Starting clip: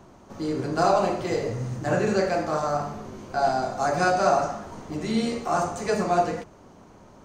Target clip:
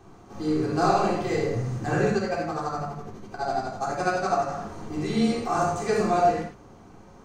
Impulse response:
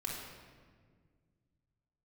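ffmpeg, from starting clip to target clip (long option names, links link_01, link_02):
-filter_complex "[0:a]asplit=3[link_01][link_02][link_03];[link_01]afade=type=out:start_time=2.07:duration=0.02[link_04];[link_02]tremolo=f=12:d=0.96,afade=type=in:start_time=2.07:duration=0.02,afade=type=out:start_time=4.49:duration=0.02[link_05];[link_03]afade=type=in:start_time=4.49:duration=0.02[link_06];[link_04][link_05][link_06]amix=inputs=3:normalize=0[link_07];[1:a]atrim=start_sample=2205,afade=type=out:start_time=0.16:duration=0.01,atrim=end_sample=7497[link_08];[link_07][link_08]afir=irnorm=-1:irlink=0"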